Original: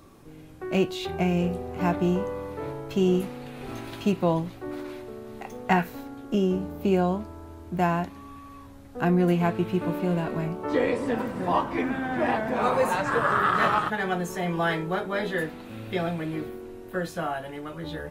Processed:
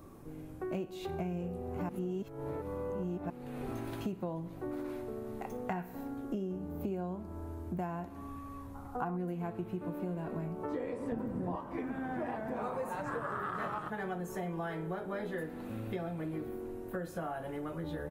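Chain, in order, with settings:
parametric band 3,700 Hz −10 dB 2.3 octaves
repeating echo 61 ms, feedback 59%, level −19 dB
0:01.89–0:03.30: reverse
0:08.75–0:09.17: gain on a spectral selection 690–1,500 Hz +12 dB
0:11.12–0:11.56: low-shelf EQ 480 Hz +12 dB
downward compressor 6 to 1, threshold −35 dBFS, peak gain reduction 18 dB

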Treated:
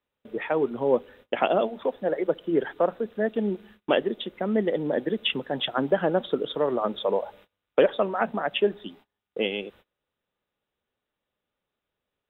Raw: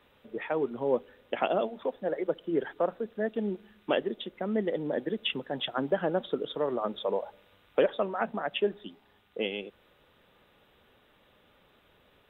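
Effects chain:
noise gate −55 dBFS, range −27 dB
level +5 dB

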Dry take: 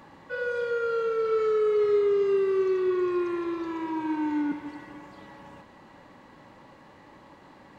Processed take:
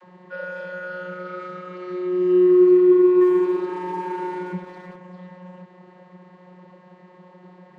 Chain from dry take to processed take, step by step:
channel vocoder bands 32, saw 181 Hz
0:03.21–0:04.96: leveller curve on the samples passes 1
level +7 dB

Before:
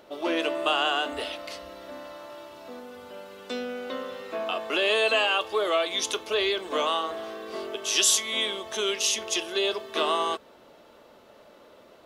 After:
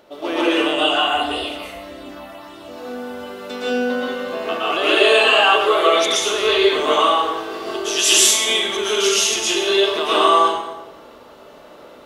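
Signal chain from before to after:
0:00.54–0:02.62: all-pass phaser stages 6, 1.7 Hz, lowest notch 320–1,800 Hz
dense smooth reverb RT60 1.1 s, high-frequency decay 0.7×, pre-delay 105 ms, DRR −8.5 dB
level +1.5 dB

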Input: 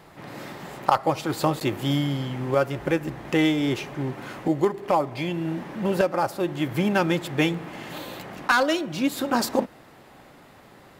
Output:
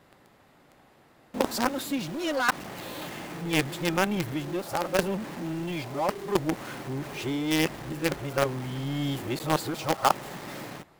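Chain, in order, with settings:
played backwards from end to start
in parallel at −5.5 dB: log-companded quantiser 2 bits
on the sum: level −8.5 dB

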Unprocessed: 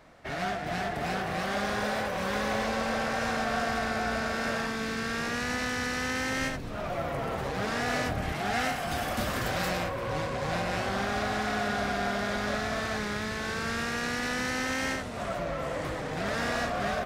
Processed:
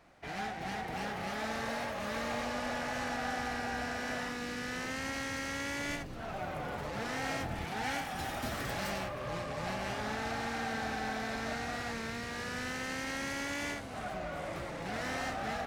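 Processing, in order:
wrong playback speed 44.1 kHz file played as 48 kHz
level −6.5 dB

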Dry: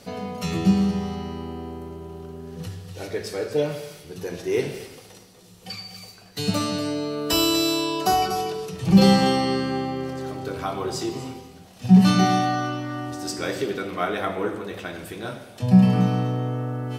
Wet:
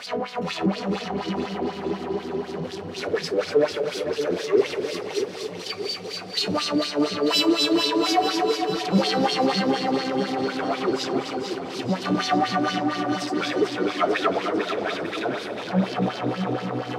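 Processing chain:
power curve on the samples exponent 0.5
auto-filter band-pass sine 4.1 Hz 300–4,700 Hz
echo with a time of its own for lows and highs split 560 Hz, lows 630 ms, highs 446 ms, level −7 dB

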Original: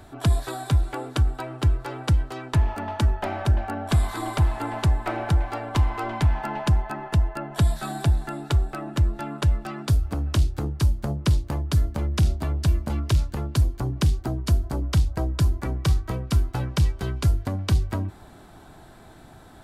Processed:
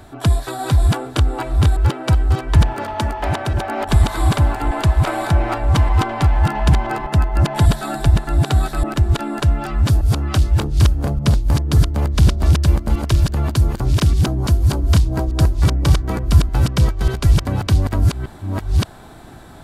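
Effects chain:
delay that plays each chunk backwards 589 ms, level −1 dB
0:02.73–0:03.88: low-shelf EQ 150 Hz −9 dB
level +5 dB

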